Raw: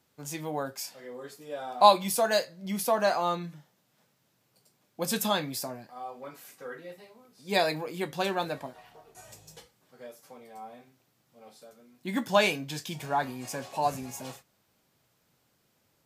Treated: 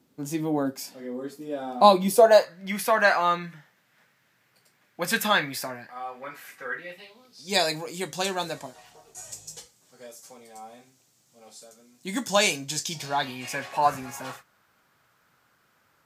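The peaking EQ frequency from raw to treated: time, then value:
peaking EQ +14.5 dB 1.3 oct
2.04 s 260 Hz
2.59 s 1.8 kHz
6.74 s 1.8 kHz
7.60 s 7.1 kHz
12.79 s 7.1 kHz
13.85 s 1.4 kHz

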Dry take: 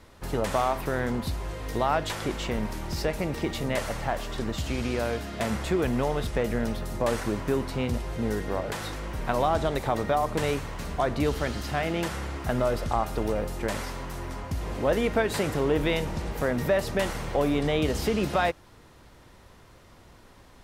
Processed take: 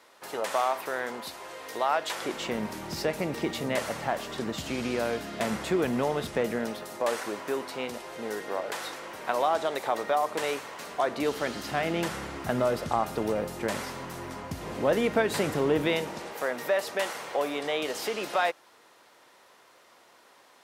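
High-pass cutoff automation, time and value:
2.04 s 520 Hz
2.61 s 170 Hz
6.38 s 170 Hz
6.96 s 430 Hz
10.91 s 430 Hz
11.99 s 140 Hz
15.76 s 140 Hz
16.40 s 510 Hz

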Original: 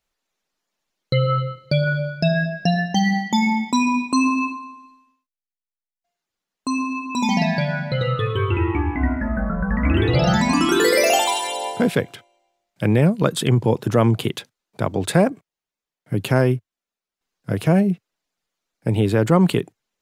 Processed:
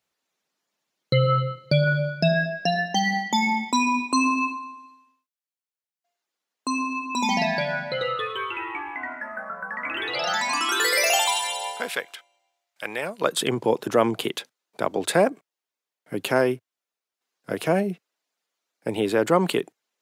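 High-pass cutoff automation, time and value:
2.05 s 110 Hz
2.63 s 320 Hz
7.80 s 320 Hz
8.50 s 930 Hz
13.01 s 930 Hz
13.42 s 330 Hz

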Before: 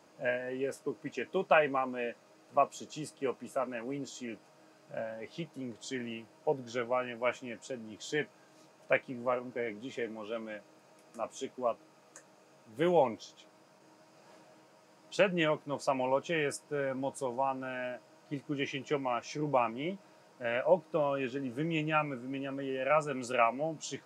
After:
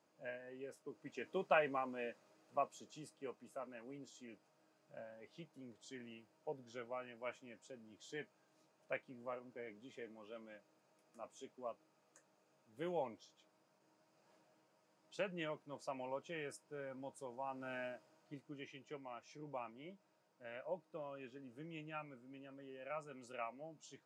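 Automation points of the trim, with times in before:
0.83 s -15.5 dB
1.28 s -8.5 dB
2.10 s -8.5 dB
3.33 s -14.5 dB
17.41 s -14.5 dB
17.74 s -6.5 dB
18.67 s -18 dB

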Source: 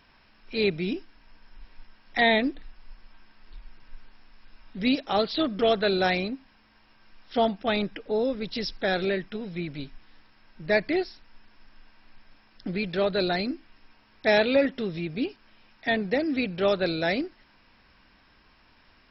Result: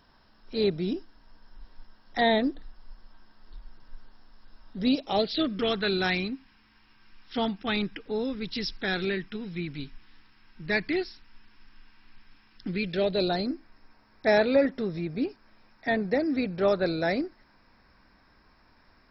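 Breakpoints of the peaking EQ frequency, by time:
peaking EQ -13 dB 0.62 oct
4.82 s 2.4 kHz
5.66 s 600 Hz
12.69 s 600 Hz
13.52 s 3 kHz

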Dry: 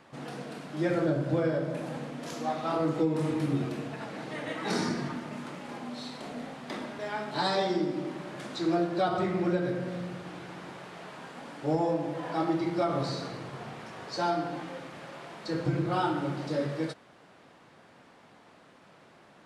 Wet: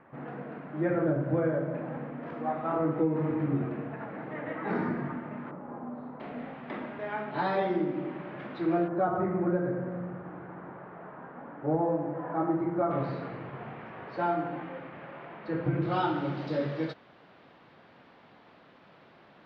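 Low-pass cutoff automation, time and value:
low-pass 24 dB/octave
2 kHz
from 5.51 s 1.3 kHz
from 6.20 s 2.6 kHz
from 8.88 s 1.6 kHz
from 12.91 s 2.5 kHz
from 15.82 s 4.2 kHz

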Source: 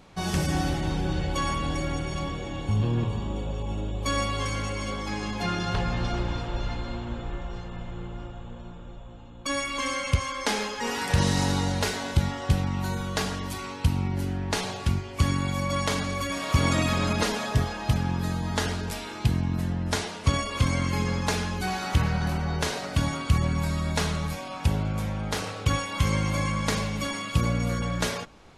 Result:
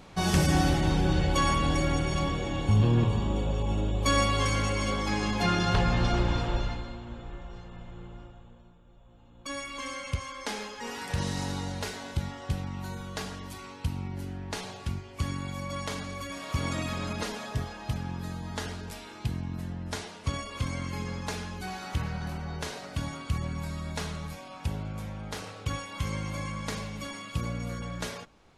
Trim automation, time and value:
6.52 s +2.5 dB
6.96 s -7.5 dB
8.15 s -7.5 dB
8.82 s -16 dB
9.41 s -8 dB

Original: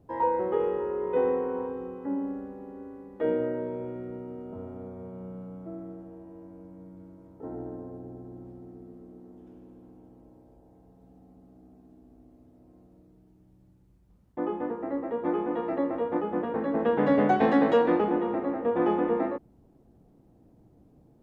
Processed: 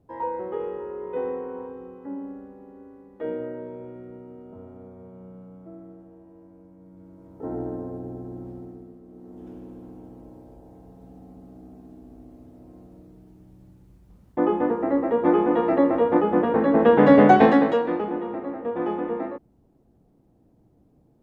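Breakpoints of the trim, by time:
6.79 s -3.5 dB
7.51 s +7 dB
8.59 s +7 dB
9.02 s -0.5 dB
9.46 s +9 dB
17.39 s +9 dB
17.82 s -2 dB

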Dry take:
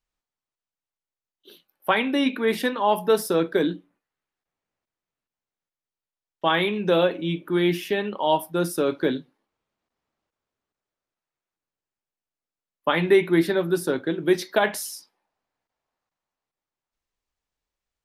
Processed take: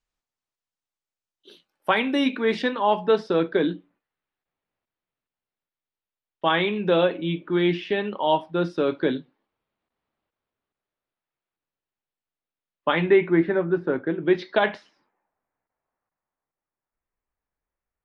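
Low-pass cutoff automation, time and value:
low-pass 24 dB/octave
2.26 s 8.7 kHz
2.83 s 4.1 kHz
12.88 s 4.1 kHz
13.38 s 2.2 kHz
14.05 s 2.2 kHz
14.63 s 4.9 kHz
14.93 s 2.1 kHz

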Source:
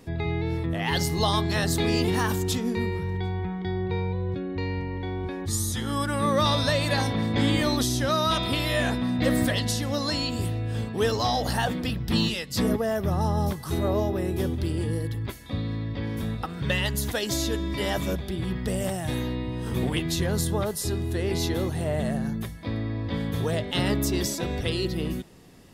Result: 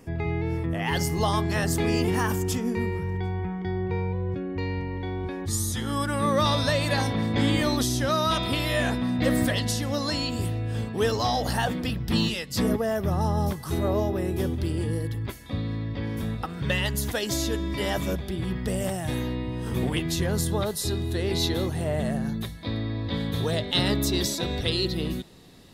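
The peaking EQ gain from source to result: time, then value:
peaking EQ 3.9 kHz 0.3 oct
-13.5 dB
from 4.59 s -2 dB
from 20.51 s +8.5 dB
from 21.66 s -0.5 dB
from 22.28 s +11 dB

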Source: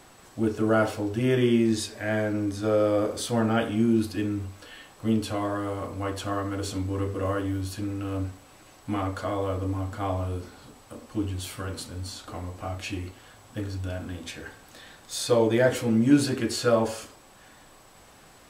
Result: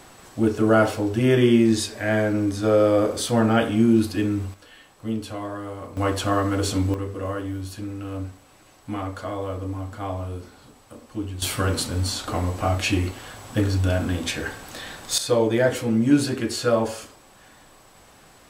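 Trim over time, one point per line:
+5 dB
from 4.54 s -3 dB
from 5.97 s +7.5 dB
from 6.94 s -1 dB
from 11.42 s +11 dB
from 15.18 s +1.5 dB

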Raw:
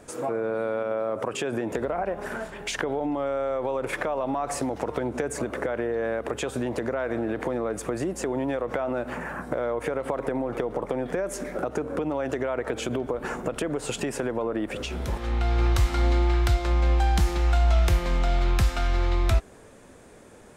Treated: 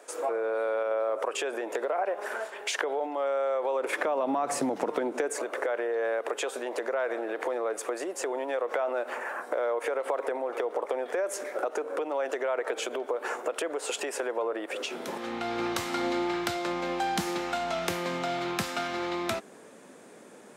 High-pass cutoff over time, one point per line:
high-pass 24 dB/octave
3.64 s 410 Hz
4.61 s 160 Hz
5.45 s 410 Hz
14.68 s 410 Hz
15.30 s 180 Hz

